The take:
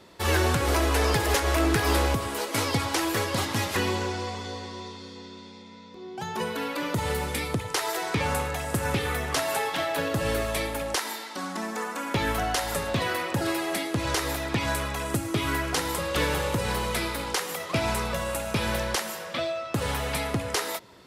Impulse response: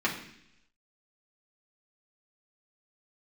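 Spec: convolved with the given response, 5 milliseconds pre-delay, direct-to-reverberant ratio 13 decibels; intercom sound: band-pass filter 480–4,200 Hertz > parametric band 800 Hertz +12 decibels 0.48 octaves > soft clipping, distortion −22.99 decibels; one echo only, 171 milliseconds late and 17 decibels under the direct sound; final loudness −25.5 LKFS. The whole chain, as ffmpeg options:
-filter_complex "[0:a]aecho=1:1:171:0.141,asplit=2[link_01][link_02];[1:a]atrim=start_sample=2205,adelay=5[link_03];[link_02][link_03]afir=irnorm=-1:irlink=0,volume=-23.5dB[link_04];[link_01][link_04]amix=inputs=2:normalize=0,highpass=480,lowpass=4200,equalizer=frequency=800:width_type=o:width=0.48:gain=12,asoftclip=threshold=-14.5dB,volume=2dB"

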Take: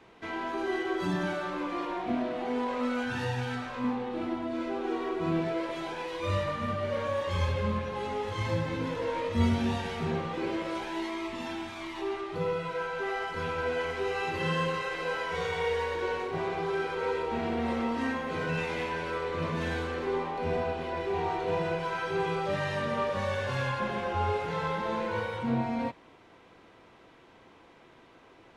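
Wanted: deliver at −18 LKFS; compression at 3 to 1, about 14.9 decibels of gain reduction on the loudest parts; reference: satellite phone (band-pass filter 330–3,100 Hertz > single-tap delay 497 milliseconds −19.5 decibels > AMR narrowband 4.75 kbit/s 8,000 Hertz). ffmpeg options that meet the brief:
ffmpeg -i in.wav -af "acompressor=threshold=-41dB:ratio=3,highpass=330,lowpass=3100,aecho=1:1:497:0.106,volume=27.5dB" -ar 8000 -c:a libopencore_amrnb -b:a 4750 out.amr

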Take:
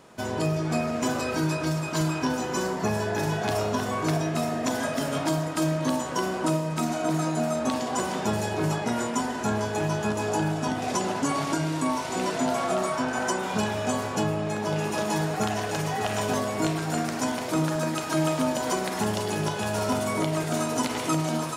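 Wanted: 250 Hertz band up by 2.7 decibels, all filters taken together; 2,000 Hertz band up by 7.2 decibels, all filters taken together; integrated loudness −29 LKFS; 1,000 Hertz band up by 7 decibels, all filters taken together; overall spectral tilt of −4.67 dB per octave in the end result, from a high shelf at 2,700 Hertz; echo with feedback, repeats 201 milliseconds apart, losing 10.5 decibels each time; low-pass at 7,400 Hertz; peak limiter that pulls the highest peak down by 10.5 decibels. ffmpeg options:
ffmpeg -i in.wav -af "lowpass=7400,equalizer=frequency=250:width_type=o:gain=3,equalizer=frequency=1000:width_type=o:gain=7,equalizer=frequency=2000:width_type=o:gain=8.5,highshelf=frequency=2700:gain=-4,alimiter=limit=-18.5dB:level=0:latency=1,aecho=1:1:201|402|603:0.299|0.0896|0.0269,volume=-2.5dB" out.wav

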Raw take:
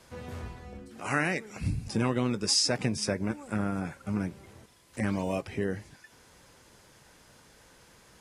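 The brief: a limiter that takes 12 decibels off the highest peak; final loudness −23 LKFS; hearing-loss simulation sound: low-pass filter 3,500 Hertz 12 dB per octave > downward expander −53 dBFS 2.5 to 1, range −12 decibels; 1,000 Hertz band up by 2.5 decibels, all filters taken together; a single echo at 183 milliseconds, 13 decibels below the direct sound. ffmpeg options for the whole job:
ffmpeg -i in.wav -af "equalizer=frequency=1000:width_type=o:gain=3.5,alimiter=limit=-23dB:level=0:latency=1,lowpass=3500,aecho=1:1:183:0.224,agate=range=-12dB:threshold=-53dB:ratio=2.5,volume=13.5dB" out.wav

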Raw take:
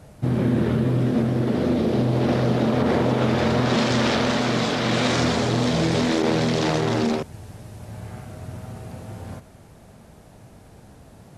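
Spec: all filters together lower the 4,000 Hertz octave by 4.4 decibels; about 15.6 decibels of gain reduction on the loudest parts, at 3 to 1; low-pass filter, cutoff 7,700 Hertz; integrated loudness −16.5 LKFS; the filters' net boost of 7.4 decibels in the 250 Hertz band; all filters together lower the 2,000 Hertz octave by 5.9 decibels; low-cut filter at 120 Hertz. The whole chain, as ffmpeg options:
ffmpeg -i in.wav -af "highpass=120,lowpass=7700,equalizer=frequency=250:width_type=o:gain=9,equalizer=frequency=2000:width_type=o:gain=-7,equalizer=frequency=4000:width_type=o:gain=-3,acompressor=threshold=-33dB:ratio=3,volume=15.5dB" out.wav

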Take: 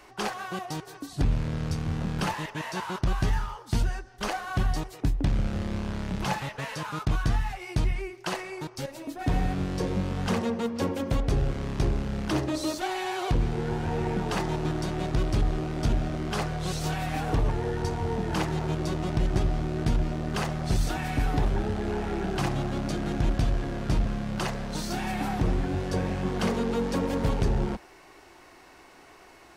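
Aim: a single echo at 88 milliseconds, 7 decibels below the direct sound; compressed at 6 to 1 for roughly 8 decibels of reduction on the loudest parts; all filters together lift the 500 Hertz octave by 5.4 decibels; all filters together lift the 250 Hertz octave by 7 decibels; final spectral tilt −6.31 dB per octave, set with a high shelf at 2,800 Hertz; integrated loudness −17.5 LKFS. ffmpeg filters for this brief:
ffmpeg -i in.wav -af "equalizer=frequency=250:width_type=o:gain=8.5,equalizer=frequency=500:width_type=o:gain=4,highshelf=frequency=2800:gain=-7.5,acompressor=threshold=-26dB:ratio=6,aecho=1:1:88:0.447,volume=13.5dB" out.wav

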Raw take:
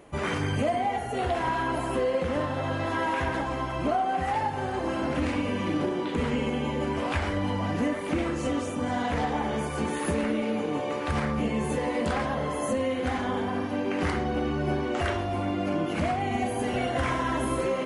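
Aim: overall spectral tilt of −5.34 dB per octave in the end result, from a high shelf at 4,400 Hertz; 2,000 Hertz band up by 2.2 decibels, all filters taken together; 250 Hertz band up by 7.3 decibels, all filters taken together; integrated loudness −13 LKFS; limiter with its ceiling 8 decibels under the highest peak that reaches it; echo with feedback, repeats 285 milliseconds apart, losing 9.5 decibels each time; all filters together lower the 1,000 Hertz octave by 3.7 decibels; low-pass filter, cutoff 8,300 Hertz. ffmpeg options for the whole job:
ffmpeg -i in.wav -af "lowpass=8300,equalizer=frequency=250:width_type=o:gain=9,equalizer=frequency=1000:width_type=o:gain=-7,equalizer=frequency=2000:width_type=o:gain=3,highshelf=frequency=4400:gain=9,alimiter=limit=-19dB:level=0:latency=1,aecho=1:1:285|570|855|1140:0.335|0.111|0.0365|0.012,volume=14dB" out.wav

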